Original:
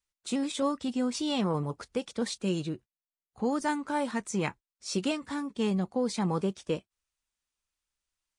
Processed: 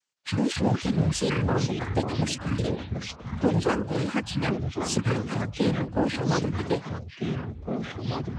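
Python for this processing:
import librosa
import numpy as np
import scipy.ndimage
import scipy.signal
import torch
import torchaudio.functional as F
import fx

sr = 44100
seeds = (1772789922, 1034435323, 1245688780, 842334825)

p1 = fx.pitch_trill(x, sr, semitones=-11.5, every_ms=184)
p2 = np.clip(p1, -10.0 ** (-27.5 / 20.0), 10.0 ** (-27.5 / 20.0))
p3 = p1 + (p2 * 10.0 ** (-5.0 / 20.0))
p4 = fx.noise_vocoder(p3, sr, seeds[0], bands=8)
p5 = fx.echo_pitch(p4, sr, ms=159, semitones=-4, count=3, db_per_echo=-6.0)
y = p5 * 10.0 ** (2.0 / 20.0)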